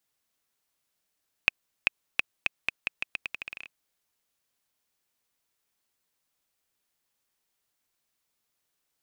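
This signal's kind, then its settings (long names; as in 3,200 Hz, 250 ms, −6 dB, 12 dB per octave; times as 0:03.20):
bouncing ball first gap 0.39 s, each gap 0.83, 2,550 Hz, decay 14 ms −4 dBFS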